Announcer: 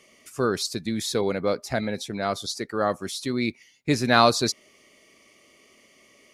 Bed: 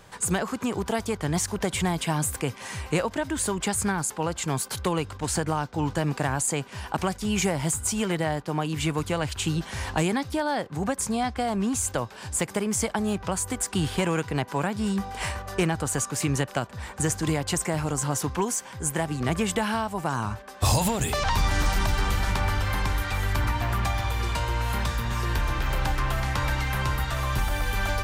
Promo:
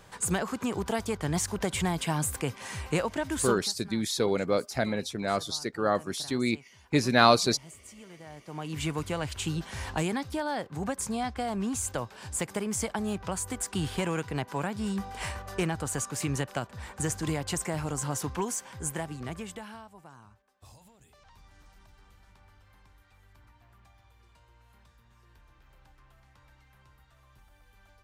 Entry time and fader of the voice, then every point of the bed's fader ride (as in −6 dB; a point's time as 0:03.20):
3.05 s, −2.0 dB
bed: 0:03.51 −3 dB
0:03.72 −23 dB
0:08.18 −23 dB
0:08.77 −5 dB
0:18.84 −5 dB
0:20.78 −33.5 dB